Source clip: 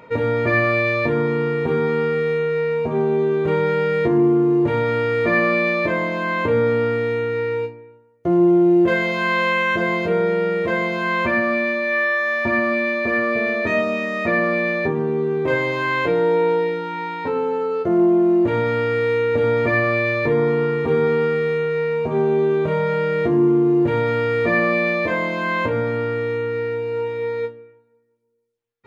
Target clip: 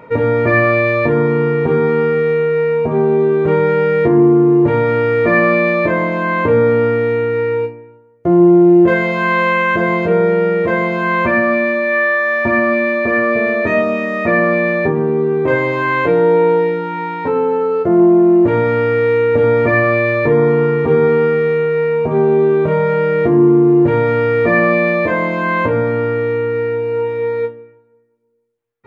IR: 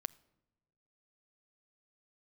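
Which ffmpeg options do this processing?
-filter_complex "[0:a]asplit=2[a][b];[1:a]atrim=start_sample=2205,lowpass=2.5k[c];[b][c]afir=irnorm=-1:irlink=0,volume=4dB[d];[a][d]amix=inputs=2:normalize=0,volume=-1dB"

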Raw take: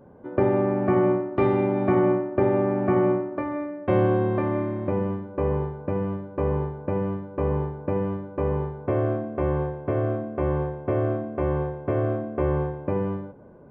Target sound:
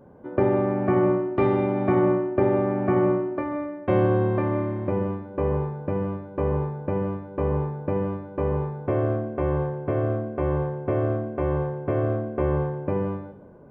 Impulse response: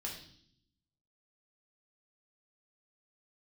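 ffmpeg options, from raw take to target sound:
-filter_complex "[0:a]asplit=2[a][b];[1:a]atrim=start_sample=2205,atrim=end_sample=3528,adelay=136[c];[b][c]afir=irnorm=-1:irlink=0,volume=-13.5dB[d];[a][d]amix=inputs=2:normalize=0"

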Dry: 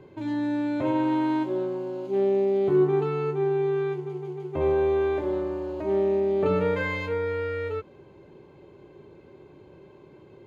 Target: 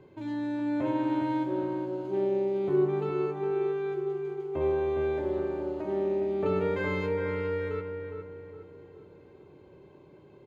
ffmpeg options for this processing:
-filter_complex "[0:a]asplit=2[a][b];[b]adelay=412,lowpass=f=1.7k:p=1,volume=-5dB,asplit=2[c][d];[d]adelay=412,lowpass=f=1.7k:p=1,volume=0.45,asplit=2[e][f];[f]adelay=412,lowpass=f=1.7k:p=1,volume=0.45,asplit=2[g][h];[h]adelay=412,lowpass=f=1.7k:p=1,volume=0.45,asplit=2[i][j];[j]adelay=412,lowpass=f=1.7k:p=1,volume=0.45,asplit=2[k][l];[l]adelay=412,lowpass=f=1.7k:p=1,volume=0.45[m];[a][c][e][g][i][k][m]amix=inputs=7:normalize=0,volume=-5dB"

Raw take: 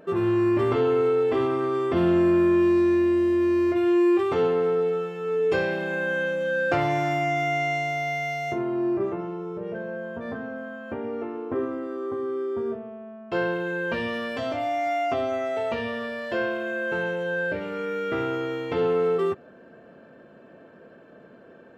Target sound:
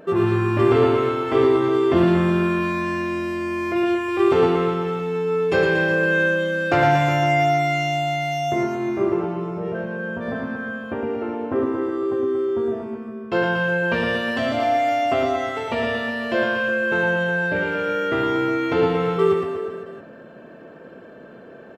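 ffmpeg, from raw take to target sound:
-af "aecho=1:1:110|231|364.1|510.5|671.6:0.631|0.398|0.251|0.158|0.1,volume=5dB"

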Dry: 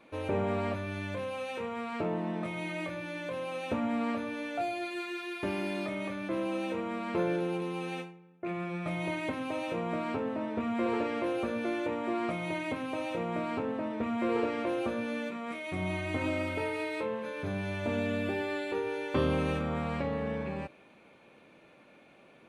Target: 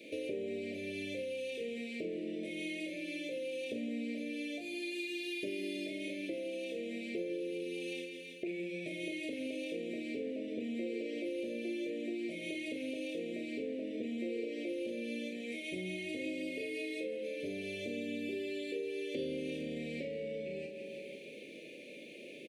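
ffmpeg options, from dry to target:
-filter_complex "[0:a]highpass=310,equalizer=f=1.2k:t=o:w=0.77:g=-6,asplit=2[a][b];[b]adelay=38,volume=-5dB[c];[a][c]amix=inputs=2:normalize=0,asplit=2[d][e];[e]aecho=0:1:164|328|492|656|820|984:0.224|0.128|0.0727|0.0415|0.0236|0.0135[f];[d][f]amix=inputs=2:normalize=0,acompressor=threshold=-48dB:ratio=5,asuperstop=centerf=1100:order=8:qfactor=0.66,volume=11dB"

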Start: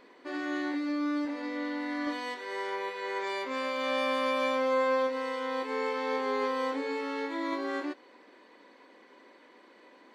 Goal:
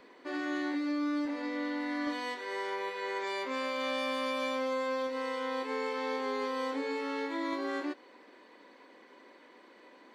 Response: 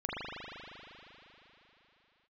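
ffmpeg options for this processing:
-filter_complex "[0:a]acrossover=split=250|3000[a][b][c];[b]acompressor=threshold=-32dB:ratio=6[d];[a][d][c]amix=inputs=3:normalize=0"

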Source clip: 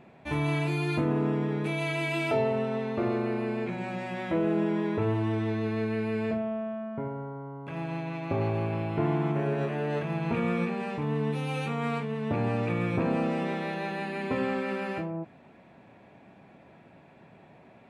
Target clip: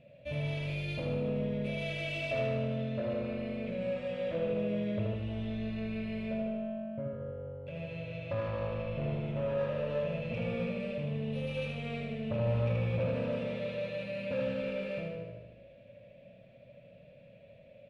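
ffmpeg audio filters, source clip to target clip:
-filter_complex "[0:a]firequalizer=gain_entry='entry(130,0);entry(390,-20);entry(560,11);entry(800,-25);entry(2700,0);entry(6400,-13)':delay=0.05:min_phase=1,asplit=2[a][b];[b]asplit=3[c][d][e];[c]adelay=146,afreqshift=-48,volume=-12.5dB[f];[d]adelay=292,afreqshift=-96,volume=-21.9dB[g];[e]adelay=438,afreqshift=-144,volume=-31.2dB[h];[f][g][h]amix=inputs=3:normalize=0[i];[a][i]amix=inputs=2:normalize=0,asoftclip=type=tanh:threshold=-26dB,bandreject=f=78.47:t=h:w=4,bandreject=f=156.94:t=h:w=4,bandreject=f=235.41:t=h:w=4,bandreject=f=313.88:t=h:w=4,bandreject=f=392.35:t=h:w=4,bandreject=f=470.82:t=h:w=4,bandreject=f=549.29:t=h:w=4,bandreject=f=627.76:t=h:w=4,bandreject=f=706.23:t=h:w=4,bandreject=f=784.7:t=h:w=4,bandreject=f=863.17:t=h:w=4,bandreject=f=941.64:t=h:w=4,bandreject=f=1.02011k:t=h:w=4,bandreject=f=1.09858k:t=h:w=4,bandreject=f=1.17705k:t=h:w=4,bandreject=f=1.25552k:t=h:w=4,bandreject=f=1.33399k:t=h:w=4,bandreject=f=1.41246k:t=h:w=4,bandreject=f=1.49093k:t=h:w=4,bandreject=f=1.5694k:t=h:w=4,bandreject=f=1.64787k:t=h:w=4,bandreject=f=1.72634k:t=h:w=4,bandreject=f=1.80481k:t=h:w=4,bandreject=f=1.88328k:t=h:w=4,bandreject=f=1.96175k:t=h:w=4,bandreject=f=2.04022k:t=h:w=4,bandreject=f=2.11869k:t=h:w=4,bandreject=f=2.19716k:t=h:w=4,bandreject=f=2.27563k:t=h:w=4,asplit=2[j][k];[k]aecho=0:1:77|154|231|308|385|462|539|616:0.631|0.36|0.205|0.117|0.0666|0.038|0.0216|0.0123[l];[j][l]amix=inputs=2:normalize=0,volume=-1.5dB"

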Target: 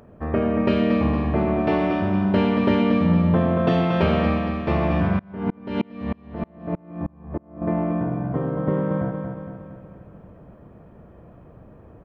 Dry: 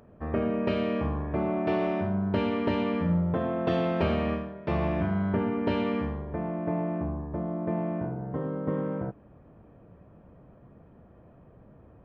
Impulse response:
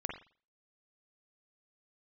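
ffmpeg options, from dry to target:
-filter_complex "[0:a]aecho=1:1:231|462|693|924|1155|1386:0.501|0.261|0.136|0.0705|0.0366|0.0191,asettb=1/sr,asplit=3[a][b][c];[a]atrim=end=5.194[d];[b]atrim=start=5.19:end=7.62,asetpts=PTS-STARTPTS,afade=t=in:d=0.004:c=qsin,afade=t=out:st=2.426:d=0.004:c=qsin,aeval=exprs='val(0)*pow(10,-33*if(lt(mod(-3.2*n/s,1),2*abs(-3.2)/1000),1-mod(-3.2*n/s,1)/(2*abs(-3.2)/1000),(mod(-3.2*n/s,1)-2*abs(-3.2)/1000)/(1-2*abs(-3.2)/1000))/20)':c=same[e];[c]atrim=start=7.616[f];[d][e]acrossfade=d=0.004:c1=hsin:c2=qsin[g];[g][f]acrossfade=d=0.004:c1=qsin:c2=hsin,volume=6dB"

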